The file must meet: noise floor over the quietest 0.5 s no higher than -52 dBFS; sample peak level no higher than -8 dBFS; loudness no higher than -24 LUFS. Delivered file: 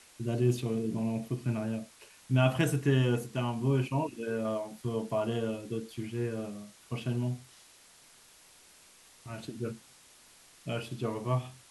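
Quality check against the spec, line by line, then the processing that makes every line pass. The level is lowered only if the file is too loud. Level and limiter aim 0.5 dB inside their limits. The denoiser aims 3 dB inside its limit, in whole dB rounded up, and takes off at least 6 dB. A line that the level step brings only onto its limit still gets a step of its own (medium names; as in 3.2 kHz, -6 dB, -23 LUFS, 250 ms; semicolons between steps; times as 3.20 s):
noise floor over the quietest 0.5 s -58 dBFS: pass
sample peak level -12.5 dBFS: pass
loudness -32.5 LUFS: pass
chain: none needed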